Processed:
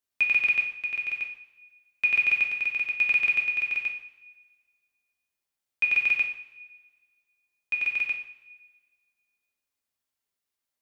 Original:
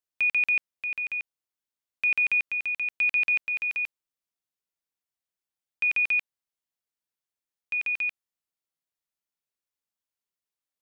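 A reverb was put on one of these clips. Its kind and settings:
coupled-rooms reverb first 0.57 s, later 1.6 s, from −16 dB, DRR −1 dB
level +1 dB

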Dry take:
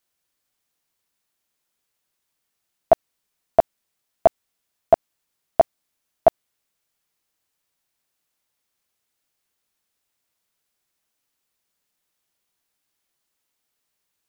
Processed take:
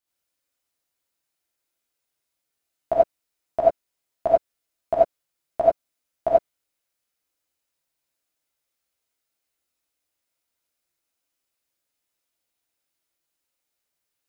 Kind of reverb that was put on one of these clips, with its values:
reverb whose tail is shaped and stops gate 110 ms rising, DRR −6 dB
level −10.5 dB

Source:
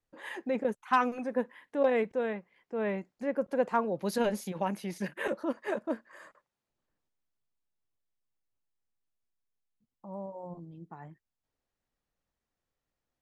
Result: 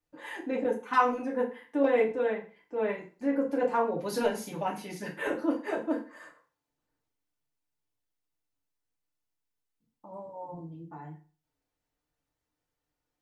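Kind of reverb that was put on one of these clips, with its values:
feedback delay network reverb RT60 0.38 s, low-frequency decay 1×, high-frequency decay 0.85×, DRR −3 dB
level −3 dB

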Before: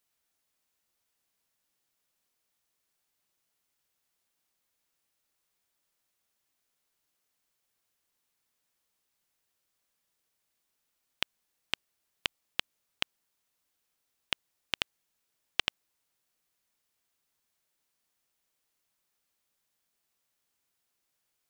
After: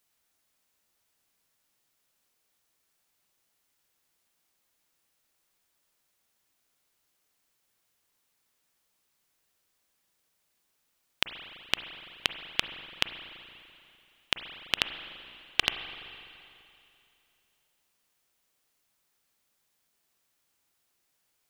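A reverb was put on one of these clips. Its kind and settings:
spring reverb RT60 2.7 s, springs 33/42/48 ms, chirp 35 ms, DRR 8 dB
level +4.5 dB

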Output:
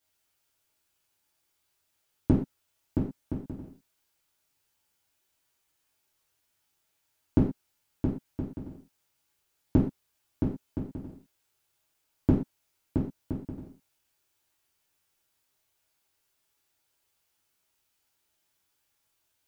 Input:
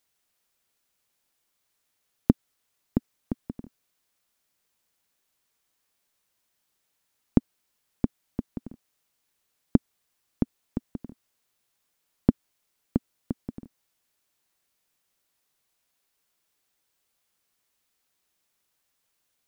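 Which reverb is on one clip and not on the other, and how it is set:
reverb whose tail is shaped and stops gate 150 ms falling, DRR −7 dB
level −7.5 dB

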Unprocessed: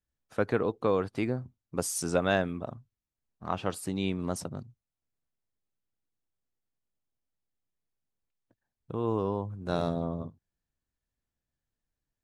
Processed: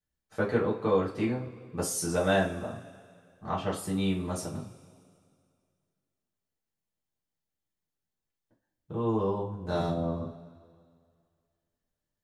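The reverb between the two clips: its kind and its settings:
coupled-rooms reverb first 0.29 s, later 2.2 s, from −21 dB, DRR −6 dB
level −6.5 dB

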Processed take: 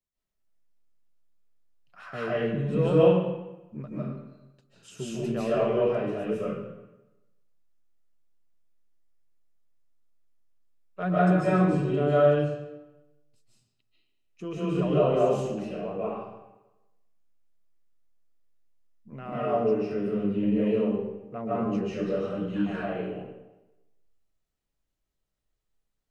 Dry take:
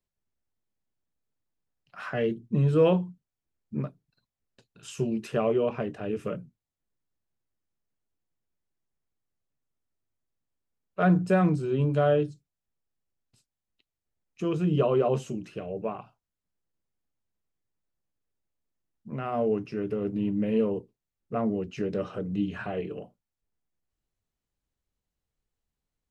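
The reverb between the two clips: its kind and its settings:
comb and all-pass reverb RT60 1 s, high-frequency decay 0.8×, pre-delay 110 ms, DRR −9 dB
level −7.5 dB

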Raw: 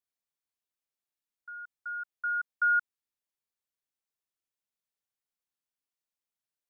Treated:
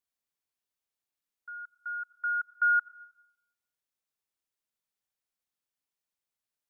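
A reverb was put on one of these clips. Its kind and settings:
comb and all-pass reverb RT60 0.86 s, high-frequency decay 0.8×, pre-delay 40 ms, DRR 18.5 dB
level +1 dB

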